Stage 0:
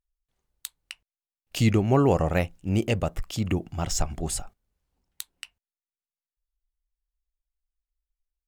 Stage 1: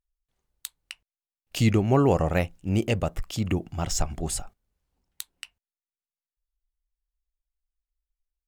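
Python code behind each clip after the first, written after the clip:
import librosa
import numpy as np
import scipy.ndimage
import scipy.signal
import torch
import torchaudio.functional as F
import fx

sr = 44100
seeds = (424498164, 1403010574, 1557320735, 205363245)

y = x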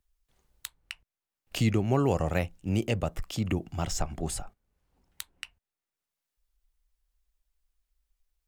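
y = fx.band_squash(x, sr, depth_pct=40)
y = y * 10.0 ** (-3.5 / 20.0)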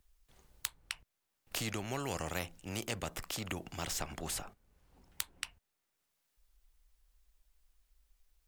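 y = fx.spectral_comp(x, sr, ratio=2.0)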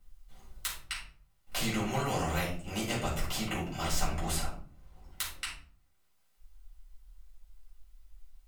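y = fx.room_shoebox(x, sr, seeds[0], volume_m3=410.0, walls='furnished', distance_m=7.1)
y = y * 10.0 ** (-5.0 / 20.0)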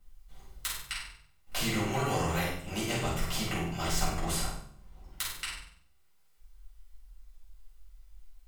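y = fx.room_flutter(x, sr, wall_m=8.2, rt60_s=0.53)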